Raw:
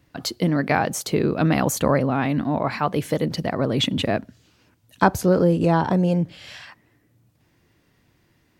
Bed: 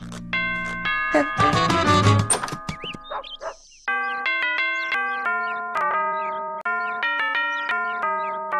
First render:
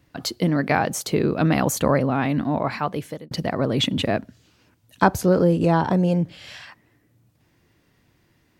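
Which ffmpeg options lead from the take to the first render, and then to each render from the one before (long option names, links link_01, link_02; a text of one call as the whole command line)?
ffmpeg -i in.wav -filter_complex "[0:a]asplit=2[link_01][link_02];[link_01]atrim=end=3.31,asetpts=PTS-STARTPTS,afade=type=out:start_time=2.46:duration=0.85:curve=qsin[link_03];[link_02]atrim=start=3.31,asetpts=PTS-STARTPTS,afade=type=in:duration=0.004:curve=hsin[link_04];[link_03][link_04]concat=n=2:v=0:a=1" out.wav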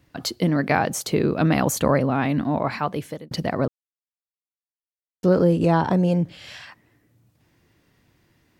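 ffmpeg -i in.wav -filter_complex "[0:a]asplit=3[link_01][link_02][link_03];[link_01]atrim=end=3.68,asetpts=PTS-STARTPTS,afade=type=out:start_time=3.676:duration=0.004:curve=hsin[link_04];[link_02]atrim=start=3.68:end=5.23,asetpts=PTS-STARTPTS,volume=0[link_05];[link_03]atrim=start=5.23,asetpts=PTS-STARTPTS,afade=type=in:duration=0.004:curve=hsin[link_06];[link_04][link_05][link_06]concat=n=3:v=0:a=1" out.wav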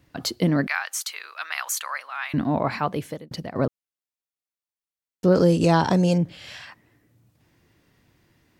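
ffmpeg -i in.wav -filter_complex "[0:a]asettb=1/sr,asplit=3[link_01][link_02][link_03];[link_01]atrim=end=0.674[link_04];[link_02]atrim=start=0.67:end=2.34,asetpts=PTS-STARTPTS,afade=type=in:duration=0.004:curve=qsin,afade=type=out:start_time=1.666:duration=0.004:curve=qsin,highpass=frequency=1200:width=0.5412,highpass=frequency=1200:width=1.3066[link_05];[link_03]atrim=start=2.336[link_06];[link_04][link_05]acrossfade=duration=0.004:curve1=hsin:curve2=qsin[link_07];[link_07][link_06]acrossfade=duration=0.004:curve1=qsin:curve2=hsin,asettb=1/sr,asplit=3[link_08][link_09][link_10];[link_08]atrim=end=5.354[link_11];[link_09]atrim=start=5.35:end=6.18,asetpts=PTS-STARTPTS,afade=type=in:duration=0.004:curve=qsin,afade=type=out:start_time=0.826:duration=0.004:curve=qsin,equalizer=frequency=6300:width_type=o:width=1.6:gain=14.5[link_12];[link_10]atrim=start=6.176[link_13];[link_11][link_12]acrossfade=duration=0.004:curve1=hsin:curve2=qsin[link_14];[link_14][link_13]acrossfade=duration=0.004:curve1=qsin:curve2=hsin,asplit=2[link_15][link_16];[link_15]atrim=end=3.55,asetpts=PTS-STARTPTS,afade=type=out:start_time=3.11:duration=0.44:silence=0.199526[link_17];[link_16]atrim=start=3.55,asetpts=PTS-STARTPTS,afade=type=in:duration=0.004:curve=hsin:silence=0.199526[link_18];[link_17][link_18]concat=n=2:v=0:a=1" out.wav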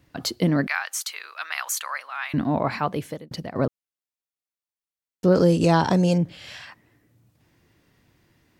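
ffmpeg -i in.wav -af anull out.wav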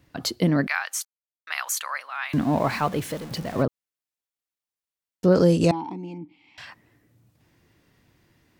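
ffmpeg -i in.wav -filter_complex "[0:a]asettb=1/sr,asplit=3[link_01][link_02][link_03];[link_01]atrim=end=2.334[link_04];[link_02]atrim=start=2.33:end=3.63,asetpts=PTS-STARTPTS,afade=type=in:duration=0.004:curve=qsin,afade=type=out:start_time=1.296:duration=0.004:curve=qsin,aeval=exprs='val(0)+0.5*0.02*sgn(val(0))':channel_layout=same[link_05];[link_03]atrim=start=3.626[link_06];[link_04][link_05]acrossfade=duration=0.004:curve1=hsin:curve2=qsin[link_07];[link_07][link_06]acrossfade=duration=0.004:curve1=qsin:curve2=hsin,asettb=1/sr,asplit=3[link_08][link_09][link_10];[link_08]atrim=end=5.714[link_11];[link_09]atrim=start=5.71:end=6.58,asetpts=PTS-STARTPTS,afade=type=in:duration=0.004:curve=qsin,afade=type=out:start_time=0.866:duration=0.004:curve=qsin,asplit=3[link_12][link_13][link_14];[link_12]bandpass=frequency=300:width_type=q:width=8,volume=0dB[link_15];[link_13]bandpass=frequency=870:width_type=q:width=8,volume=-6dB[link_16];[link_14]bandpass=frequency=2240:width_type=q:width=8,volume=-9dB[link_17];[link_15][link_16][link_17]amix=inputs=3:normalize=0[link_18];[link_10]atrim=start=6.576[link_19];[link_11][link_18]acrossfade=duration=0.004:curve1=hsin:curve2=qsin[link_20];[link_20][link_19]acrossfade=duration=0.004:curve1=qsin:curve2=hsin,asplit=3[link_21][link_22][link_23];[link_21]atrim=end=1.05,asetpts=PTS-STARTPTS,afade=type=out:start_time=1.046:duration=0.004:curve=hsin[link_24];[link_22]atrim=start=1.05:end=1.47,asetpts=PTS-STARTPTS,volume=0[link_25];[link_23]atrim=start=1.47,asetpts=PTS-STARTPTS,afade=type=in:duration=0.004:curve=hsin[link_26];[link_24][link_25][link_26]concat=n=3:v=0:a=1" out.wav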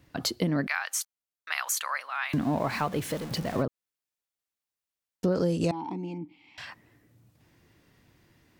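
ffmpeg -i in.wav -af "acompressor=threshold=-25dB:ratio=3" out.wav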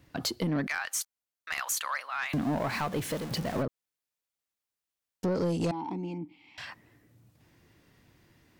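ffmpeg -i in.wav -af "asoftclip=type=tanh:threshold=-22.5dB" out.wav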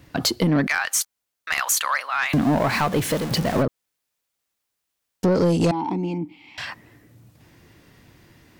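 ffmpeg -i in.wav -af "volume=10dB" out.wav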